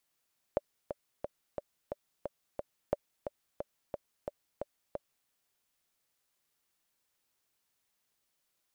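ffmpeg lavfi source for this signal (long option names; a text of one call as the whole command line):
ffmpeg -f lavfi -i "aevalsrc='pow(10,(-15-8*gte(mod(t,7*60/178),60/178))/20)*sin(2*PI*580*mod(t,60/178))*exp(-6.91*mod(t,60/178)/0.03)':duration=4.71:sample_rate=44100" out.wav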